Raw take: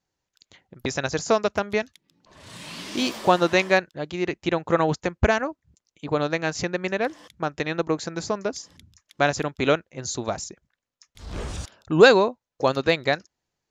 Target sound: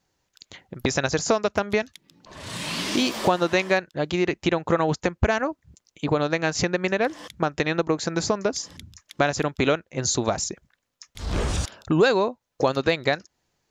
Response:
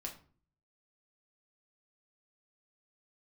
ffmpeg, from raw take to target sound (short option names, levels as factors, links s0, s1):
-af "acompressor=threshold=0.0355:ratio=3,volume=2.66"